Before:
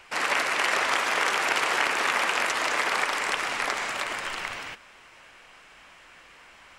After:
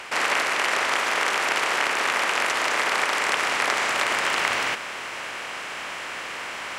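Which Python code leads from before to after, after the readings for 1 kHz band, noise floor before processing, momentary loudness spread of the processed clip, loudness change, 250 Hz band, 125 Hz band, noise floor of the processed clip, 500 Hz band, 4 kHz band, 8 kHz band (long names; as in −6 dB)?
+3.0 dB, −52 dBFS, 10 LU, +1.5 dB, +3.0 dB, +3.5 dB, −34 dBFS, +3.5 dB, +3.5 dB, +3.5 dB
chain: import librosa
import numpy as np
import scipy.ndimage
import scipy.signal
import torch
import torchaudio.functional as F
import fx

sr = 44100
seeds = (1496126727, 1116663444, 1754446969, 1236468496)

y = fx.bin_compress(x, sr, power=0.6)
y = scipy.signal.sosfilt(scipy.signal.butter(2, 85.0, 'highpass', fs=sr, output='sos'), y)
y = fx.rider(y, sr, range_db=5, speed_s=0.5)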